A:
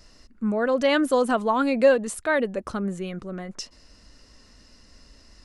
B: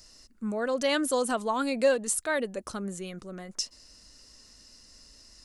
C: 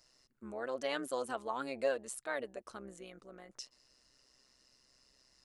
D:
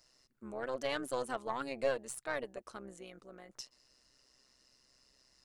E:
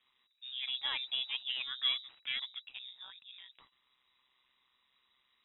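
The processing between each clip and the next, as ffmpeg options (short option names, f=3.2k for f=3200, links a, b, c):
-af "bass=f=250:g=-2,treble=f=4k:g=13,volume=-6dB"
-af "tremolo=f=130:d=0.71,bass=f=250:g=-11,treble=f=4k:g=-7,volume=-6dB"
-af "aeval=exprs='0.0891*(cos(1*acos(clip(val(0)/0.0891,-1,1)))-cos(1*PI/2))+0.00501*(cos(6*acos(clip(val(0)/0.0891,-1,1)))-cos(6*PI/2))':c=same"
-af "lowpass=f=3.3k:t=q:w=0.5098,lowpass=f=3.3k:t=q:w=0.6013,lowpass=f=3.3k:t=q:w=0.9,lowpass=f=3.3k:t=q:w=2.563,afreqshift=-3900"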